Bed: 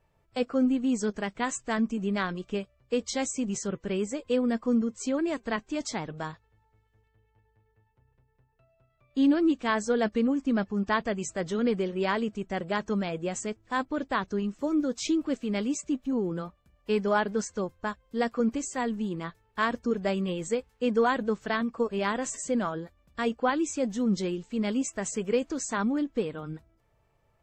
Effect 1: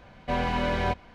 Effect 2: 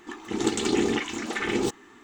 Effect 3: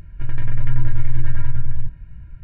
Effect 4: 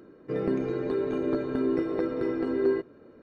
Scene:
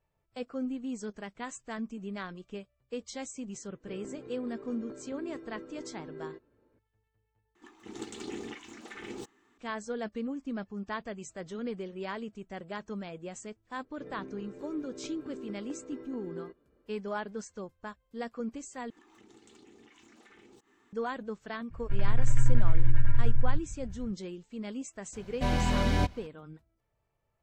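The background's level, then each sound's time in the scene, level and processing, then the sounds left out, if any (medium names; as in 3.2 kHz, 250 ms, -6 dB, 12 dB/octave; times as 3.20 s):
bed -10 dB
3.57 s: add 4 -17.5 dB
7.55 s: replace with 2 -16 dB
13.71 s: add 4 -17.5 dB
18.90 s: replace with 2 -15 dB + compression 5:1, threshold -41 dBFS
21.70 s: add 3 -5 dB, fades 0.02 s
25.13 s: add 1 -5 dB + tone controls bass +9 dB, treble +14 dB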